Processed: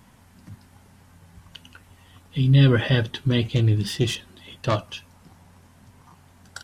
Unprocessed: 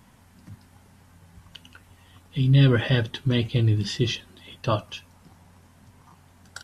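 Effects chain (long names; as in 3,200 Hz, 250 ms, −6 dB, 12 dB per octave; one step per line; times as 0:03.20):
0:03.48–0:04.95: phase distortion by the signal itself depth 0.13 ms
level +1.5 dB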